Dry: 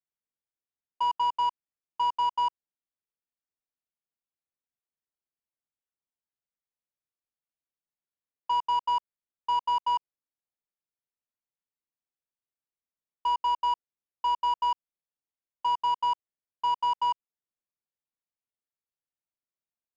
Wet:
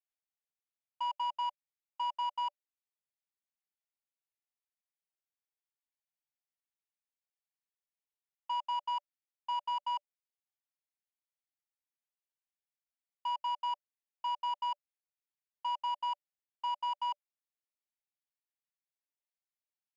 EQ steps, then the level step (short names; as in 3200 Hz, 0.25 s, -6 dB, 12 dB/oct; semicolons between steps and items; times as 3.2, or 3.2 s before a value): rippled Chebyshev high-pass 570 Hz, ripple 6 dB; -3.5 dB